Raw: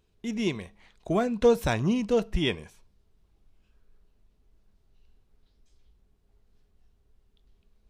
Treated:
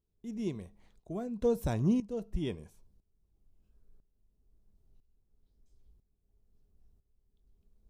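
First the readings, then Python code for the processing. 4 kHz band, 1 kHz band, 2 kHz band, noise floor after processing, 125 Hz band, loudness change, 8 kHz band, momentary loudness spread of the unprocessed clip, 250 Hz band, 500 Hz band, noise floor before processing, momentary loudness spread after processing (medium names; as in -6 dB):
-17.0 dB, -12.5 dB, -17.0 dB, -78 dBFS, -3.5 dB, -7.0 dB, -10.0 dB, 11 LU, -5.0 dB, -9.5 dB, -68 dBFS, 15 LU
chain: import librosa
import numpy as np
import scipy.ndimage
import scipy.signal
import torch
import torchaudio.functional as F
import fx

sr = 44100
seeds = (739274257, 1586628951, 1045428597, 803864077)

y = fx.peak_eq(x, sr, hz=2300.0, db=-14.5, octaves=3.0)
y = fx.tremolo_shape(y, sr, shape='saw_up', hz=1.0, depth_pct=80)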